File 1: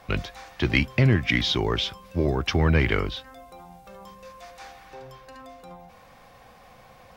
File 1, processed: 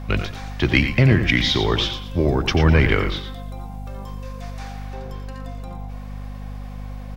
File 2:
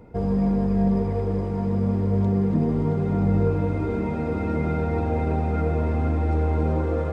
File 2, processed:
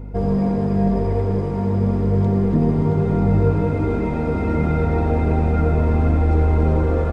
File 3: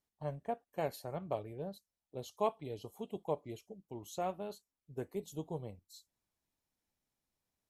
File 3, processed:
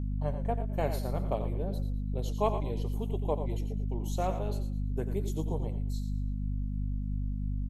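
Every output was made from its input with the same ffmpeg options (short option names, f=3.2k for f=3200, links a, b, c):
-filter_complex "[0:a]asplit=2[a][b];[b]aecho=0:1:89:0.299[c];[a][c]amix=inputs=2:normalize=0,aeval=exprs='val(0)+0.0178*(sin(2*PI*50*n/s)+sin(2*PI*2*50*n/s)/2+sin(2*PI*3*50*n/s)/3+sin(2*PI*4*50*n/s)/4+sin(2*PI*5*50*n/s)/5)':c=same,asplit=2[d][e];[e]asplit=3[f][g][h];[f]adelay=114,afreqshift=-47,volume=-12dB[i];[g]adelay=228,afreqshift=-94,volume=-21.9dB[j];[h]adelay=342,afreqshift=-141,volume=-31.8dB[k];[i][j][k]amix=inputs=3:normalize=0[l];[d][l]amix=inputs=2:normalize=0,volume=4dB"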